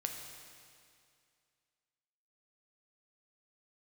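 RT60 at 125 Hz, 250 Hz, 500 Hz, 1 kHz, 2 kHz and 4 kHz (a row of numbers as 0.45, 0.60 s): 2.3, 2.3, 2.3, 2.3, 2.3, 2.2 s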